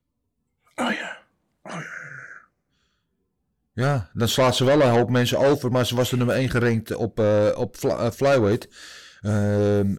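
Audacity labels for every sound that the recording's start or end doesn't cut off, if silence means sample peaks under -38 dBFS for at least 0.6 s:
0.780000	2.380000	sound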